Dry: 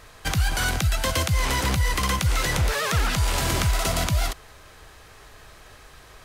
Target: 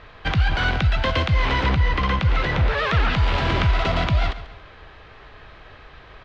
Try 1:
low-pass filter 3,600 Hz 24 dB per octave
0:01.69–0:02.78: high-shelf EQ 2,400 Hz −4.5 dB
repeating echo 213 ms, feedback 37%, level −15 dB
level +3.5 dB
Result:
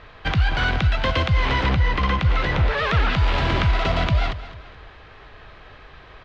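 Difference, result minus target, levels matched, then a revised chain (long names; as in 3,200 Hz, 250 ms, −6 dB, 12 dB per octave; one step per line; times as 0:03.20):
echo 74 ms late
low-pass filter 3,600 Hz 24 dB per octave
0:01.69–0:02.78: high-shelf EQ 2,400 Hz −4.5 dB
repeating echo 139 ms, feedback 37%, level −15 dB
level +3.5 dB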